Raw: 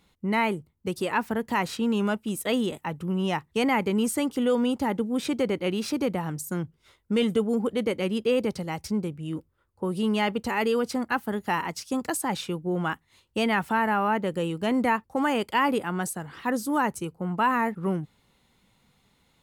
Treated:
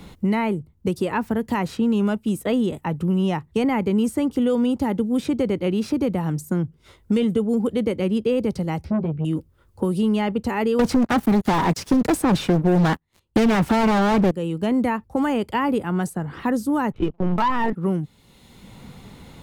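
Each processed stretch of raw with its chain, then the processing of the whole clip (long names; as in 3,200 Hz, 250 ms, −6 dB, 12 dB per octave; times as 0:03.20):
0:08.84–0:09.25: high-frequency loss of the air 430 metres + double-tracking delay 13 ms −4.5 dB + saturating transformer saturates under 550 Hz
0:10.79–0:14.31: leveller curve on the samples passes 5 + highs frequency-modulated by the lows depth 0.42 ms
0:16.92–0:17.73: linear-prediction vocoder at 8 kHz pitch kept + leveller curve on the samples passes 2
whole clip: tilt shelving filter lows +5 dB, about 710 Hz; multiband upward and downward compressor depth 70%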